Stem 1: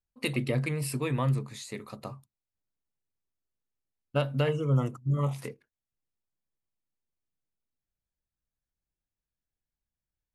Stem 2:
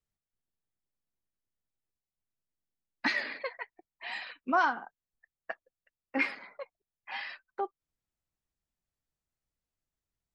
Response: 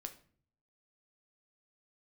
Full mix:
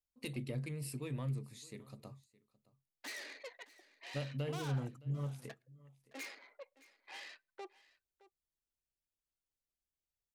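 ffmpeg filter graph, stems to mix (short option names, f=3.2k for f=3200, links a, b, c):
-filter_complex "[0:a]asoftclip=type=tanh:threshold=-17.5dB,volume=-9.5dB,asplit=2[a][b];[b]volume=-22dB[c];[1:a]aeval=exprs='(tanh(70.8*val(0)+0.7)-tanh(0.7))/70.8':c=same,highpass=f=330:w=0.5412,highpass=f=330:w=1.3066,volume=-2dB,asplit=3[d][e][f];[e]volume=-16.5dB[g];[f]volume=-18.5dB[h];[2:a]atrim=start_sample=2205[i];[g][i]afir=irnorm=-1:irlink=0[j];[c][h]amix=inputs=2:normalize=0,aecho=0:1:616:1[k];[a][d][j][k]amix=inputs=4:normalize=0,equalizer=f=1.2k:t=o:w=2.1:g=-8"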